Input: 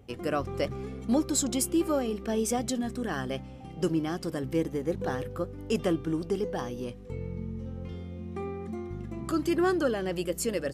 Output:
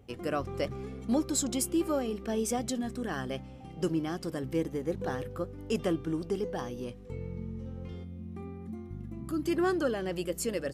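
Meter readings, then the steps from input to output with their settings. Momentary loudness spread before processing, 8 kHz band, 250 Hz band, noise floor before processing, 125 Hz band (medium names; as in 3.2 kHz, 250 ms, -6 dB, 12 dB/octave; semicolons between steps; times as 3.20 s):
12 LU, -2.5 dB, -2.5 dB, -43 dBFS, -2.5 dB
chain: time-frequency box 8.04–9.46 s, 340–9500 Hz -8 dB; trim -2.5 dB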